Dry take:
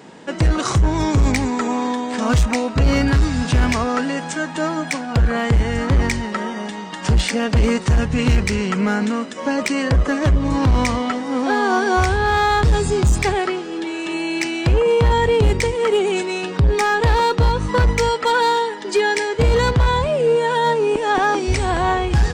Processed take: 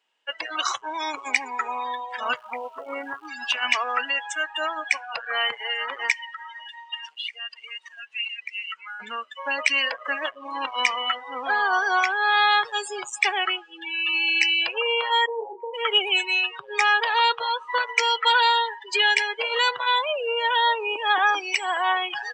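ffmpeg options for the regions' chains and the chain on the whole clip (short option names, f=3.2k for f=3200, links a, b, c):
-filter_complex "[0:a]asettb=1/sr,asplit=3[a][b][c];[a]atrim=end=2.364[d];[b]atrim=start=2.36:end=3.28,asetpts=PTS-STARTPTS,afade=t=in:d=0.004:c=qsin,afade=t=out:st=0.916:d=0.004:c=qsin,lowpass=1.2k,acrusher=bits=6:dc=4:mix=0:aa=0.000001[e];[c]atrim=start=3.276[f];[d][e]acrossfade=d=0.004:c1=hsin:c2=qsin[g];[g][f]acrossfade=d=0.004:c1=qsin:c2=hsin,asettb=1/sr,asplit=3[h][i][j];[h]atrim=end=6.124[k];[i]atrim=start=6.12:end=9,asetpts=PTS-STARTPTS,afade=t=in:d=0.004:c=qsin,afade=t=out:st=2.876:d=0.004:c=qsin,highpass=f=1k:p=1,acompressor=threshold=-28dB:ratio=6:attack=3.2:release=140:knee=1:detection=peak[l];[j]atrim=start=8.996[m];[k][l]acrossfade=d=0.004:c1=hsin:c2=qsin[n];[n][m]acrossfade=d=0.004:c1=qsin:c2=hsin,asettb=1/sr,asplit=3[o][p][q];[o]atrim=end=15.264[r];[p]atrim=start=15.26:end=15.74,asetpts=PTS-STARTPTS,afade=t=in:d=0.004:c=qsin,afade=t=out:st=0.476:d=0.004:c=qsin,lowpass=f=1k:w=0.5412,lowpass=f=1k:w=1.3066,lowshelf=f=370:g=-4,asplit=2[s][t];[t]adelay=35,volume=-6dB[u];[s][u]amix=inputs=2:normalize=0,atrim=end_sample=21168[v];[q]atrim=start=15.736[w];[r][v]acrossfade=d=0.004:c1=hsin:c2=qsin[x];[x][w]acrossfade=d=0.004:c1=qsin:c2=hsin,highpass=910,afftdn=nr=30:nf=-27,equalizer=f=2.9k:w=3.2:g=13.5"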